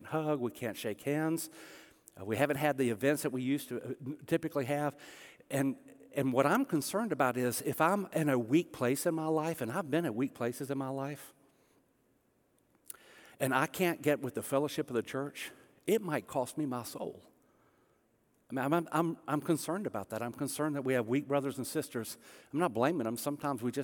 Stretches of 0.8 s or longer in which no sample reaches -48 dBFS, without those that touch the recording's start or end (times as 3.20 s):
11.30–12.88 s
17.18–18.50 s